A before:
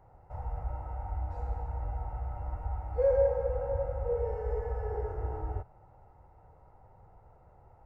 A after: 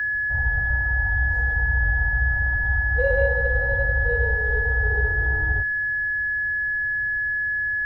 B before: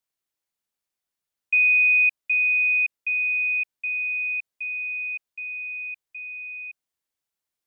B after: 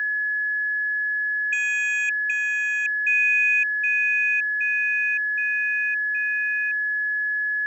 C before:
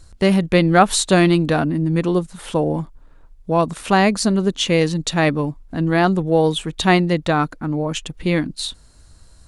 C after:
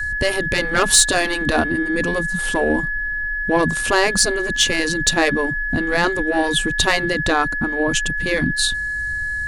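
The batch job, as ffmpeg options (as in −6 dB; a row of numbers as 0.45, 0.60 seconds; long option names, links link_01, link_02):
-af "aeval=exprs='val(0)+0.0631*sin(2*PI*1700*n/s)':channel_layout=same,adynamicequalizer=threshold=0.00631:dfrequency=100:dqfactor=3.7:tfrequency=100:tqfactor=3.7:attack=5:release=100:ratio=0.375:range=1.5:mode=cutabove:tftype=bell,acontrast=59,bass=frequency=250:gain=11,treble=frequency=4000:gain=7,afftfilt=real='re*lt(hypot(re,im),2.24)':imag='im*lt(hypot(re,im),2.24)':win_size=1024:overlap=0.75,volume=-4dB"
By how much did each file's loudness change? +12.0, 0.0, 0.0 LU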